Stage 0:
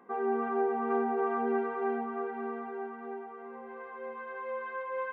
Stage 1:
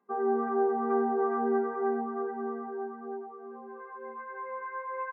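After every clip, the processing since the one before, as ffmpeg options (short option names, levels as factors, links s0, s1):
-af "afftdn=nr=18:nf=-40,aecho=1:1:4.9:0.44"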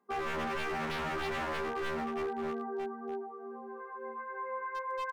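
-af "aeval=exprs='0.0316*(abs(mod(val(0)/0.0316+3,4)-2)-1)':c=same"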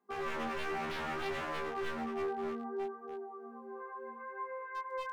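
-af "flanger=delay=19.5:depth=3.5:speed=0.65"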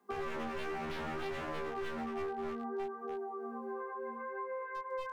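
-filter_complex "[0:a]acrossover=split=97|590[s0][s1][s2];[s0]acompressor=threshold=0.00224:ratio=4[s3];[s1]acompressor=threshold=0.00355:ratio=4[s4];[s2]acompressor=threshold=0.00251:ratio=4[s5];[s3][s4][s5]amix=inputs=3:normalize=0,volume=2.51"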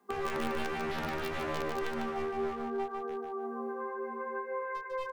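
-filter_complex "[0:a]asplit=2[s0][s1];[s1]acrusher=bits=4:mix=0:aa=0.000001,volume=0.531[s2];[s0][s2]amix=inputs=2:normalize=0,aecho=1:1:149|298|447:0.596|0.137|0.0315,volume=1.41"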